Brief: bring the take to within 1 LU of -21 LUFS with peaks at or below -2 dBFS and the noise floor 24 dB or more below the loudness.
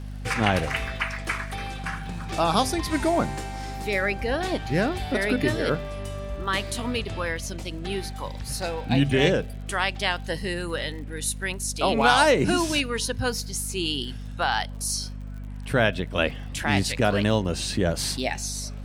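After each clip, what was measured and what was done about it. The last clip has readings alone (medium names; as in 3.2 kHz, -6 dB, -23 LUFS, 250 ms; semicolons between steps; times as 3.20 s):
tick rate 52 per s; hum 50 Hz; highest harmonic 250 Hz; hum level -33 dBFS; loudness -25.5 LUFS; peak level -6.0 dBFS; loudness target -21.0 LUFS
-> de-click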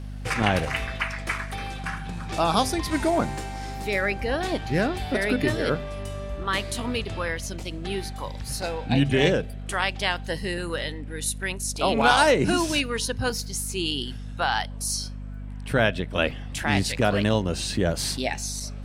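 tick rate 0.53 per s; hum 50 Hz; highest harmonic 250 Hz; hum level -33 dBFS
-> de-hum 50 Hz, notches 5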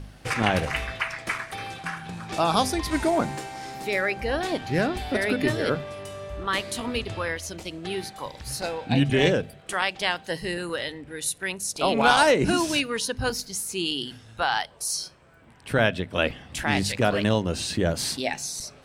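hum not found; loudness -26.0 LUFS; peak level -3.5 dBFS; loudness target -21.0 LUFS
-> trim +5 dB; peak limiter -2 dBFS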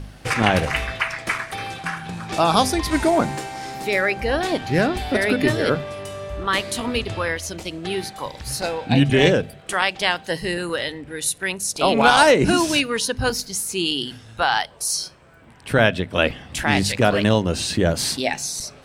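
loudness -21.0 LUFS; peak level -2.0 dBFS; noise floor -46 dBFS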